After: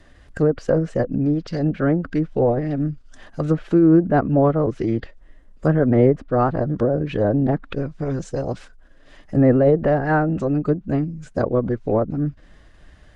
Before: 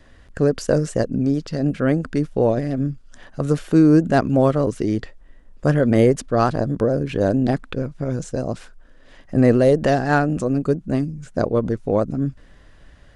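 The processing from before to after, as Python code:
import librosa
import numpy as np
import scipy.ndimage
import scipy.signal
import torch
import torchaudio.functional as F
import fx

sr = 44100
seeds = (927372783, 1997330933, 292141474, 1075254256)

y = fx.pitch_keep_formants(x, sr, semitones=1.0)
y = fx.env_lowpass_down(y, sr, base_hz=1400.0, full_db=-14.5)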